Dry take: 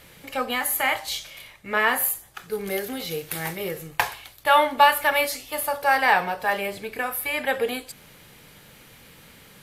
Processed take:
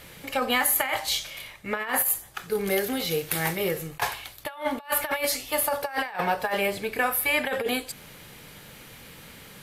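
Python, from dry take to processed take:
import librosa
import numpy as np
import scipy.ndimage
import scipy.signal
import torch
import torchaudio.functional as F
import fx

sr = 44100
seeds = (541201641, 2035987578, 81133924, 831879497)

y = fx.over_compress(x, sr, threshold_db=-25.0, ratio=-0.5)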